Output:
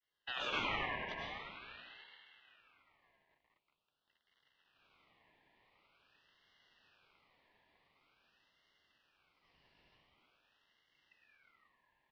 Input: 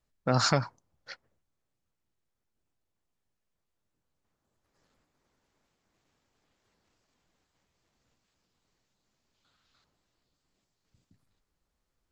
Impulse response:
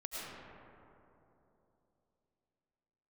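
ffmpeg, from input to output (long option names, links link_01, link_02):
-filter_complex "[0:a]areverse,acompressor=threshold=-32dB:ratio=16,areverse[link_01];[1:a]atrim=start_sample=2205[link_02];[link_01][link_02]afir=irnorm=-1:irlink=0,adynamicequalizer=threshold=0.00126:dfrequency=1400:dqfactor=0.77:tfrequency=1400:tqfactor=0.77:attack=5:release=100:ratio=0.375:range=2.5:mode=cutabove:tftype=bell,acrossover=split=480|2400[link_03][link_04][link_05];[link_03]acrusher=bits=6:mode=log:mix=0:aa=0.000001[link_06];[link_06][link_04][link_05]amix=inputs=3:normalize=0,asplit=2[link_07][link_08];[link_08]adelay=13,volume=-12dB[link_09];[link_07][link_09]amix=inputs=2:normalize=0,highpass=frequency=180:width_type=q:width=0.5412,highpass=frequency=180:width_type=q:width=1.307,lowpass=frequency=3100:width_type=q:width=0.5176,lowpass=frequency=3100:width_type=q:width=0.7071,lowpass=frequency=3100:width_type=q:width=1.932,afreqshift=130,aeval=exprs='val(0)*sin(2*PI*1900*n/s+1900*0.3/0.46*sin(2*PI*0.46*n/s))':channel_layout=same,volume=6.5dB"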